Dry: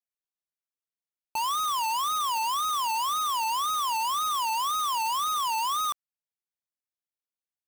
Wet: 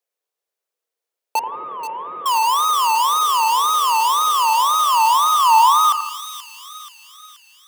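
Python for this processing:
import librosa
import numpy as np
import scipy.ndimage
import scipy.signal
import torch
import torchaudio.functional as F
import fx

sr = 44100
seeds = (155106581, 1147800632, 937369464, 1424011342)

y = fx.delta_mod(x, sr, bps=16000, step_db=-47.5, at=(1.39, 2.26))
y = fx.echo_split(y, sr, split_hz=1900.0, low_ms=83, high_ms=480, feedback_pct=52, wet_db=-9.5)
y = fx.filter_sweep_highpass(y, sr, from_hz=470.0, to_hz=1500.0, start_s=4.2, end_s=7.6, q=3.9)
y = F.gain(torch.from_numpy(y), 8.5).numpy()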